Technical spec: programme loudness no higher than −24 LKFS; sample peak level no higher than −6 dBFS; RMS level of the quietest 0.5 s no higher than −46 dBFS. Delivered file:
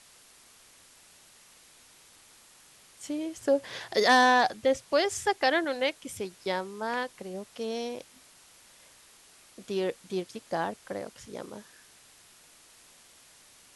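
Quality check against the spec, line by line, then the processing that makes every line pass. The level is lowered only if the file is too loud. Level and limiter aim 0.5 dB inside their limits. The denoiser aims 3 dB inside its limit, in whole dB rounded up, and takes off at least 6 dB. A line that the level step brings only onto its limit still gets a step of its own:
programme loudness −28.5 LKFS: in spec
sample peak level −11.0 dBFS: in spec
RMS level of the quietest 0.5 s −57 dBFS: in spec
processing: no processing needed

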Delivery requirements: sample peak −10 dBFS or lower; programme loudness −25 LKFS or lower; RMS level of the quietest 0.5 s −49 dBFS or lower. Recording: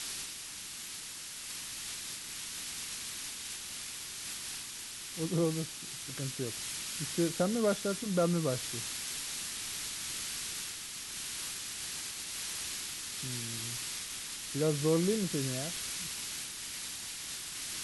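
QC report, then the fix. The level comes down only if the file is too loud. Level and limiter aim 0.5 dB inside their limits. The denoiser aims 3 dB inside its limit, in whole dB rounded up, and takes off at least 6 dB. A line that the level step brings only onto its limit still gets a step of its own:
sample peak −17.5 dBFS: in spec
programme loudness −35.5 LKFS: in spec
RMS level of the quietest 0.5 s −44 dBFS: out of spec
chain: broadband denoise 8 dB, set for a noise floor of −44 dBFS

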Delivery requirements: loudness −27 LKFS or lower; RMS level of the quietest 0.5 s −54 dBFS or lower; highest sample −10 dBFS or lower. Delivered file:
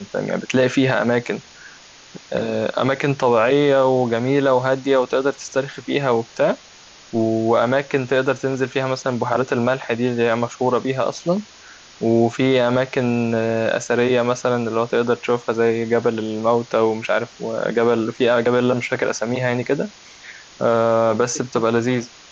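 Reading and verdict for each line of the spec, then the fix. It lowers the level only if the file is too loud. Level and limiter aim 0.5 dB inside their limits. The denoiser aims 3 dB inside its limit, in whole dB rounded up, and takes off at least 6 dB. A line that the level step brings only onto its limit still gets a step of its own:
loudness −19.5 LKFS: out of spec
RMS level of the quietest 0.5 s −45 dBFS: out of spec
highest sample −5.5 dBFS: out of spec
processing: broadband denoise 6 dB, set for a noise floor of −45 dBFS
level −8 dB

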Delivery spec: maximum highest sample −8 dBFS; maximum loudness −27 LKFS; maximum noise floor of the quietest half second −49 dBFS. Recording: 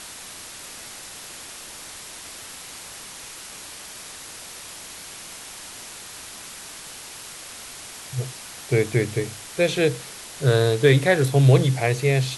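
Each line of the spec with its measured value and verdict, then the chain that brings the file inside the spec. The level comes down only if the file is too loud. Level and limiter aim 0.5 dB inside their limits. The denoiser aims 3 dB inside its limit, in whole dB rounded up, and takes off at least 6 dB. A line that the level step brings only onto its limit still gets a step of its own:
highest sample −4.5 dBFS: out of spec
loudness −21.0 LKFS: out of spec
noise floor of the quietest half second −39 dBFS: out of spec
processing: broadband denoise 7 dB, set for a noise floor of −39 dBFS
level −6.5 dB

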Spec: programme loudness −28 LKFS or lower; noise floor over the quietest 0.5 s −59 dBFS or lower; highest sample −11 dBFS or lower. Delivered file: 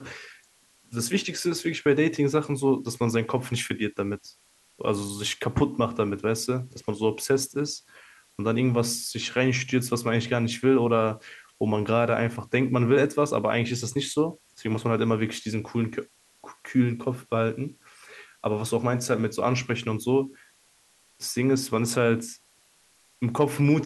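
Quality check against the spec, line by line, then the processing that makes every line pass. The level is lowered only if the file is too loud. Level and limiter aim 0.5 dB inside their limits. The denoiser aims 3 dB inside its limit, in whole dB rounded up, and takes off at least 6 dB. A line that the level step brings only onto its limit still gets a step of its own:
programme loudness −26.0 LKFS: out of spec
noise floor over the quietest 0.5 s −62 dBFS: in spec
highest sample −8.5 dBFS: out of spec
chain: level −2.5 dB
brickwall limiter −11.5 dBFS

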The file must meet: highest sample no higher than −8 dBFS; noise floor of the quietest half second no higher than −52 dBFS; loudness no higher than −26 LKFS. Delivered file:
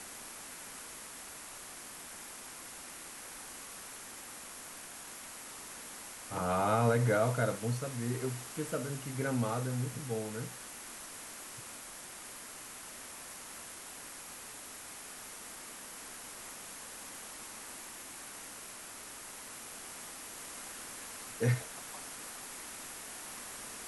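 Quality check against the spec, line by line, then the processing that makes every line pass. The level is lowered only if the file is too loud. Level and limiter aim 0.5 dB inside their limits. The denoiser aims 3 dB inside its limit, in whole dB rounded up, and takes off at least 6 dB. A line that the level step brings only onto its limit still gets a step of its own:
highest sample −16.5 dBFS: in spec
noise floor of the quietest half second −48 dBFS: out of spec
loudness −39.0 LKFS: in spec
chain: broadband denoise 7 dB, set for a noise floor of −48 dBFS

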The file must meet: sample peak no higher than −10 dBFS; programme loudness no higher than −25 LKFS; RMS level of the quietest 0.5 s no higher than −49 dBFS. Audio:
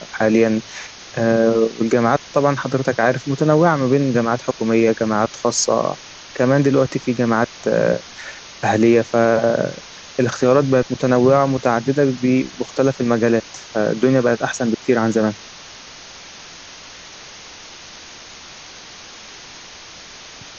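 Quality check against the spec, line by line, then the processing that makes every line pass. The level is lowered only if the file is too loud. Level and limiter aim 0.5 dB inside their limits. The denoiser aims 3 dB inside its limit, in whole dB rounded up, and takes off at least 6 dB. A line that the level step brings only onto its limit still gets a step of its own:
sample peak −4.0 dBFS: out of spec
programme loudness −17.5 LKFS: out of spec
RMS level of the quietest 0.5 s −39 dBFS: out of spec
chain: broadband denoise 6 dB, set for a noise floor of −39 dBFS
level −8 dB

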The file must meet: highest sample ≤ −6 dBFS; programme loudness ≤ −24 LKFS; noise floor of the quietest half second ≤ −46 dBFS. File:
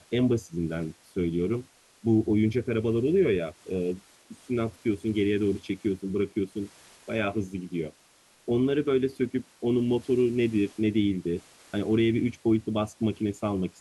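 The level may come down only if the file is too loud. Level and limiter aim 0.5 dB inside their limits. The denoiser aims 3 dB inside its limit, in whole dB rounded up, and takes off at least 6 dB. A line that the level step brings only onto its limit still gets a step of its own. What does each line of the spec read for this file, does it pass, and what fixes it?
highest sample −13.0 dBFS: in spec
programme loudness −27.5 LKFS: in spec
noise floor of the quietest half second −60 dBFS: in spec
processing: no processing needed

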